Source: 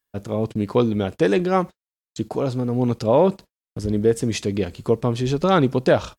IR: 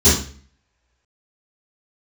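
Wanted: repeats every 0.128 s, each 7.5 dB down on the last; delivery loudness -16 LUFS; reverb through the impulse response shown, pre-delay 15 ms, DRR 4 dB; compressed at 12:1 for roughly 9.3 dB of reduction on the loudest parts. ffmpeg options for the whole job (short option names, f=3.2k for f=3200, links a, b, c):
-filter_complex "[0:a]acompressor=threshold=-21dB:ratio=12,aecho=1:1:128|256|384|512|640:0.422|0.177|0.0744|0.0312|0.0131,asplit=2[a][b];[1:a]atrim=start_sample=2205,adelay=15[c];[b][c]afir=irnorm=-1:irlink=0,volume=-26dB[d];[a][d]amix=inputs=2:normalize=0,volume=5dB"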